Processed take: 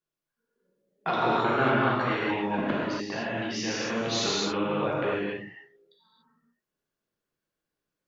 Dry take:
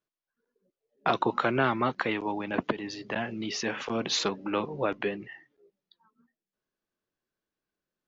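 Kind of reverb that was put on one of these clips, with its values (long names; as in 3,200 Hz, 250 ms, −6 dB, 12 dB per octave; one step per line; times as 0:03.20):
reverb whose tail is shaped and stops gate 310 ms flat, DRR −7 dB
level −5.5 dB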